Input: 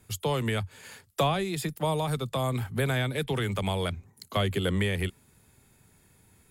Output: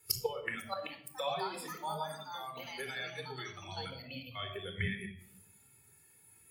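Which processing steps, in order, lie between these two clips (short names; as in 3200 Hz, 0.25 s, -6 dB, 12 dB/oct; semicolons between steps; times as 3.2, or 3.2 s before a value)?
spectral noise reduction 15 dB; tilt +4 dB/oct; echoes that change speed 0.504 s, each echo +5 st, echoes 2; flipped gate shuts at -26 dBFS, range -30 dB; high shelf 2600 Hz -7 dB; shoebox room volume 3900 m³, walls furnished, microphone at 4.2 m; spectral expander 1.5:1; gain +18 dB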